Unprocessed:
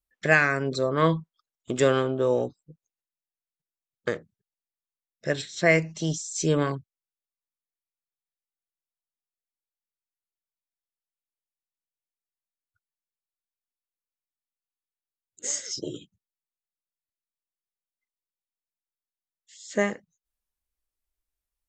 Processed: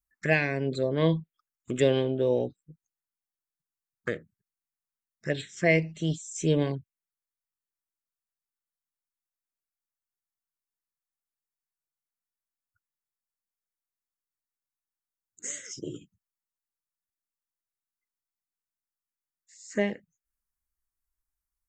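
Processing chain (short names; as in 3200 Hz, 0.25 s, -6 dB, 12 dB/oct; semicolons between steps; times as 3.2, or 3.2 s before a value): envelope phaser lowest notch 540 Hz, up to 1300 Hz, full sweep at -21 dBFS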